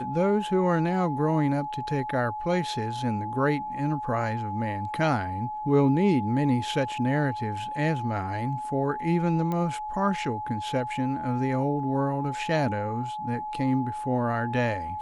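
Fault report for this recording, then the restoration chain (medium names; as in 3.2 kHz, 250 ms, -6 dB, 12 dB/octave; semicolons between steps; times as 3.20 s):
whine 850 Hz -31 dBFS
9.52 s: pop -18 dBFS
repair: de-click; band-stop 850 Hz, Q 30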